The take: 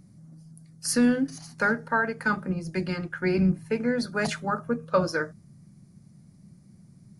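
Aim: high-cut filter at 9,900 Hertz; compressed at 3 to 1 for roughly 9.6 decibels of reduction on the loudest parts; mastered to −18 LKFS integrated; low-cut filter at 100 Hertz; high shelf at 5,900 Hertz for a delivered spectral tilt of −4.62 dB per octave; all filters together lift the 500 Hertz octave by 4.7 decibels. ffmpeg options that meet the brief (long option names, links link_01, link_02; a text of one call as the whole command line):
ffmpeg -i in.wav -af "highpass=100,lowpass=9900,equalizer=frequency=500:width_type=o:gain=5.5,highshelf=frequency=5900:gain=4.5,acompressor=threshold=-26dB:ratio=3,volume=12.5dB" out.wav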